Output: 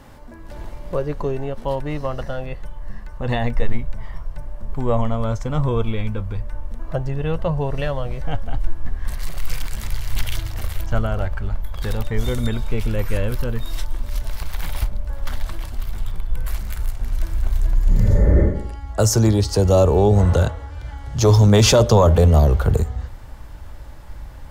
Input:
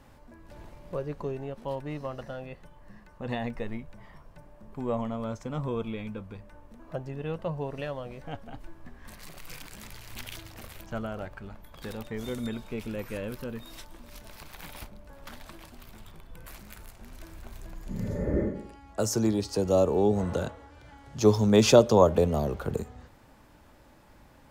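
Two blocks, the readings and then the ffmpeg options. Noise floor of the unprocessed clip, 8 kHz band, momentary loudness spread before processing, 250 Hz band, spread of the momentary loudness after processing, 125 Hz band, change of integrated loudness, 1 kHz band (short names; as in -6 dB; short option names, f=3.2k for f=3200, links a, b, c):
-55 dBFS, +10.0 dB, 24 LU, +6.0 dB, 21 LU, +15.5 dB, +7.5 dB, +7.5 dB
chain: -af "asubboost=boost=7:cutoff=83,apsyclip=18dB,bandreject=f=2.5k:w=17,volume=-7.5dB"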